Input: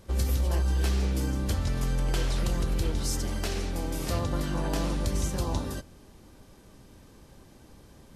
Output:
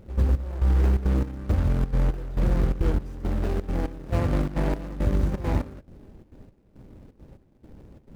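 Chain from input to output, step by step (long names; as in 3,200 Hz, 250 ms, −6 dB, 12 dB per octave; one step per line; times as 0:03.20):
running median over 41 samples
dynamic equaliser 1,300 Hz, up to +5 dB, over −51 dBFS, Q 0.81
gate pattern "x.xx...xxx" 171 BPM −12 dB
level +6 dB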